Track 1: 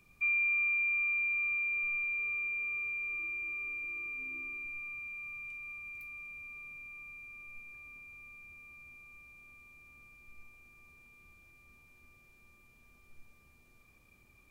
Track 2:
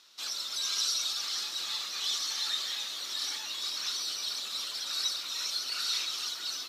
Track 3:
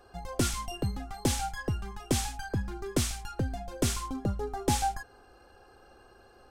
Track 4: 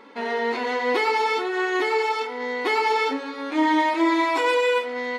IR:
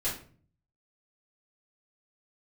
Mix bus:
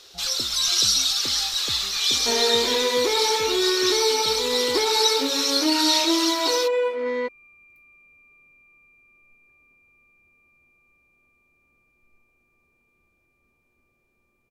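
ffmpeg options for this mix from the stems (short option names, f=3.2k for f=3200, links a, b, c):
-filter_complex "[0:a]acontrast=56,adelay=1750,volume=-16dB[a];[1:a]tiltshelf=f=970:g=-9.5,volume=1.5dB[b];[2:a]alimiter=level_in=0.5dB:limit=-24dB:level=0:latency=1,volume=-0.5dB,volume=-10.5dB[c];[3:a]adelay=2100,volume=-3.5dB[d];[c][d]amix=inputs=2:normalize=0,bandreject=f=740:w=12,acompressor=threshold=-28dB:ratio=6,volume=0dB[e];[a][b][e]amix=inputs=3:normalize=0,equalizer=f=440:w=0.59:g=10.5"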